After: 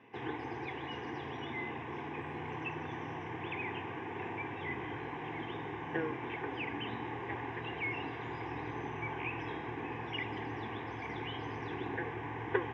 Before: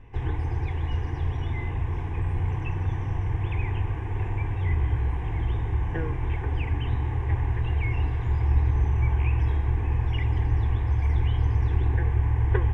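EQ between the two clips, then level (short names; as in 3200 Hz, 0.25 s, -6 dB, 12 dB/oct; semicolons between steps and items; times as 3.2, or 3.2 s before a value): HPF 190 Hz 24 dB/oct; air absorption 210 m; high shelf 3000 Hz +11 dB; -1.5 dB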